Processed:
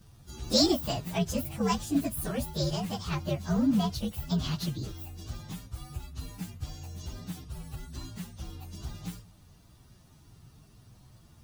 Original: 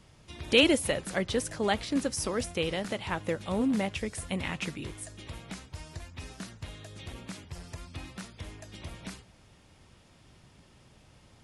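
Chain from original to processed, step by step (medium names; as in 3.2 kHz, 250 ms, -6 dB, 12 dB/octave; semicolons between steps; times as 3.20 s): frequency axis rescaled in octaves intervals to 121%; graphic EQ 125/500/2000 Hz +7/-5/-5 dB; trim +4 dB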